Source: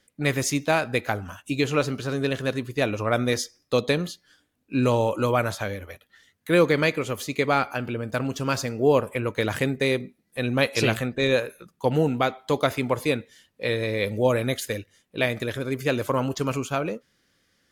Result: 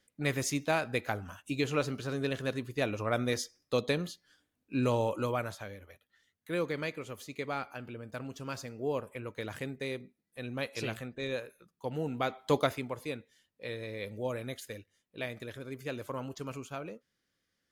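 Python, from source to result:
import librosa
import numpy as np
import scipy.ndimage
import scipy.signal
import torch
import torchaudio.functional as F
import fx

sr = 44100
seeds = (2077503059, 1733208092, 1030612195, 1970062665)

y = fx.gain(x, sr, db=fx.line((5.11, -7.5), (5.66, -14.0), (11.97, -14.0), (12.55, -3.0), (12.9, -14.0)))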